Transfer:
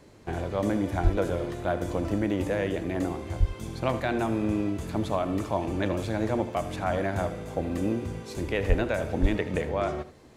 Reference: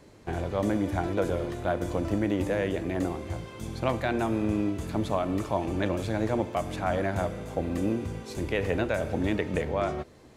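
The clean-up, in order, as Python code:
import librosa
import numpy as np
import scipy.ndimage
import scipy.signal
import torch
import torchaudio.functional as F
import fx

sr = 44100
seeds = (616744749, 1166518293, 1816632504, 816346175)

y = fx.fix_deplosive(x, sr, at_s=(1.03, 3.39, 8.68, 9.21))
y = fx.fix_echo_inverse(y, sr, delay_ms=79, level_db=-14.5)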